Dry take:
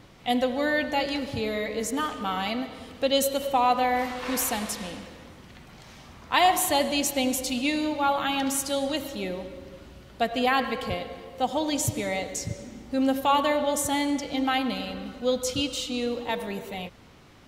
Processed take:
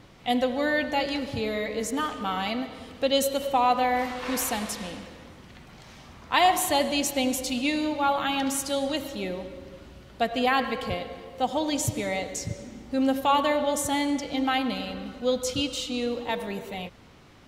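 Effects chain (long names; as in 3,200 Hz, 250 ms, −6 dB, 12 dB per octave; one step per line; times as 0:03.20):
high-shelf EQ 10,000 Hz −4 dB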